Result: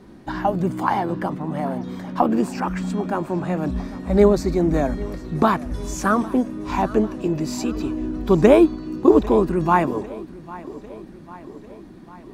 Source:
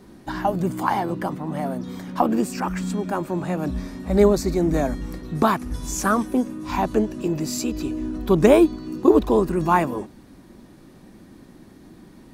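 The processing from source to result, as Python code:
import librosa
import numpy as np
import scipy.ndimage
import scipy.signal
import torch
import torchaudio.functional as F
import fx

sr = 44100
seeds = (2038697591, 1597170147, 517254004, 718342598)

y = fx.high_shelf(x, sr, hz=6100.0, db=-11.0)
y = fx.echo_feedback(y, sr, ms=798, feedback_pct=59, wet_db=-19)
y = y * librosa.db_to_amplitude(1.5)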